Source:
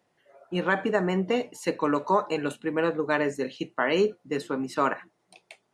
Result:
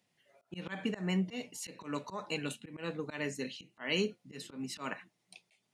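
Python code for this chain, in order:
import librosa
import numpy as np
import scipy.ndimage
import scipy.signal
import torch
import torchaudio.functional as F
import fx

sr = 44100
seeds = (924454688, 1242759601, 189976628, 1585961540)

y = fx.low_shelf(x, sr, hz=130.0, db=-8.0)
y = fx.auto_swell(y, sr, attack_ms=143.0)
y = fx.band_shelf(y, sr, hz=710.0, db=-11.0, octaves=2.8)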